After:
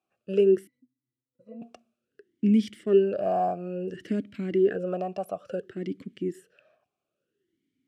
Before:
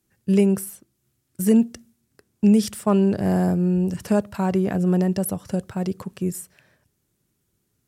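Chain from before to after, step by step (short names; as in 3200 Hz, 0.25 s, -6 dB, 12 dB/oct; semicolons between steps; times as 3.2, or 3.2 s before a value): 0.67–1.62 octave resonator B, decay 0.15 s; vowel sweep a-i 0.58 Hz; gain +7.5 dB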